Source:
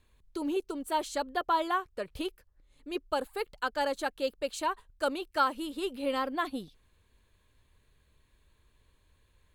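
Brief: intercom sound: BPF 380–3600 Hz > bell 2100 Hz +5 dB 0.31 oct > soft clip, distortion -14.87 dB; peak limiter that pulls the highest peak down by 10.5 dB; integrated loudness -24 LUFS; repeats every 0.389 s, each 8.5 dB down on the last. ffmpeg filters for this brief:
-af "alimiter=level_in=0.5dB:limit=-24dB:level=0:latency=1,volume=-0.5dB,highpass=380,lowpass=3.6k,equalizer=f=2.1k:t=o:w=0.31:g=5,aecho=1:1:389|778|1167|1556:0.376|0.143|0.0543|0.0206,asoftclip=threshold=-29dB,volume=15dB"

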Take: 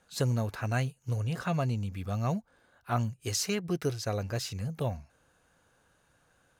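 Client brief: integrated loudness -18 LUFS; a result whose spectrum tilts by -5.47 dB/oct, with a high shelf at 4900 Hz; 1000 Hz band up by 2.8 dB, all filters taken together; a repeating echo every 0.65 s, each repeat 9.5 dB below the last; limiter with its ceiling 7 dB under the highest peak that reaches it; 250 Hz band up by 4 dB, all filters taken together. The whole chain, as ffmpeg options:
-af "equalizer=f=250:t=o:g=5.5,equalizer=f=1k:t=o:g=3.5,highshelf=f=4.9k:g=3.5,alimiter=limit=-21dB:level=0:latency=1,aecho=1:1:650|1300|1950|2600:0.335|0.111|0.0365|0.012,volume=14dB"

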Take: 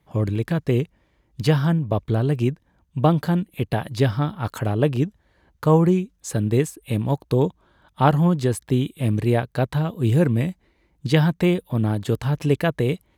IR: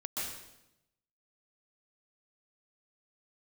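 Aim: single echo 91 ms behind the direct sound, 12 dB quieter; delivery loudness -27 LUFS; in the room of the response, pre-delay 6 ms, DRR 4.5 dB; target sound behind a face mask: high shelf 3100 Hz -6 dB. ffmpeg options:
-filter_complex "[0:a]aecho=1:1:91:0.251,asplit=2[a][b];[1:a]atrim=start_sample=2205,adelay=6[c];[b][c]afir=irnorm=-1:irlink=0,volume=-7.5dB[d];[a][d]amix=inputs=2:normalize=0,highshelf=f=3.1k:g=-6,volume=-6.5dB"

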